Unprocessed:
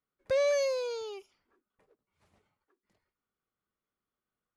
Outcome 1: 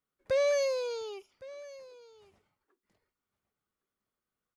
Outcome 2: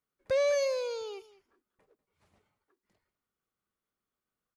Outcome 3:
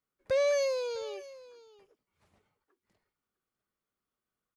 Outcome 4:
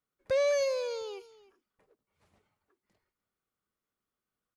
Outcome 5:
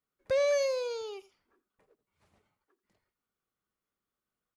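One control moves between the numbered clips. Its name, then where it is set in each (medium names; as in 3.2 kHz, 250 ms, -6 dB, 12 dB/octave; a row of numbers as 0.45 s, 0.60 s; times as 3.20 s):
delay, time: 1112 ms, 197 ms, 652 ms, 303 ms, 85 ms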